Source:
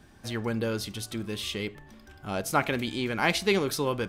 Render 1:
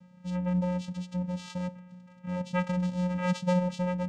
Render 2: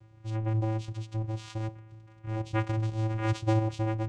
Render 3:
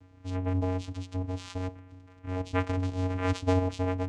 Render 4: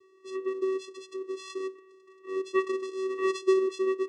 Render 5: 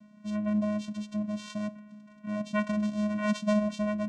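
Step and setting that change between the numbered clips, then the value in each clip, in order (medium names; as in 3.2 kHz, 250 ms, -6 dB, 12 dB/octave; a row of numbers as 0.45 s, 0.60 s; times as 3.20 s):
vocoder, frequency: 180 Hz, 110 Hz, 92 Hz, 380 Hz, 210 Hz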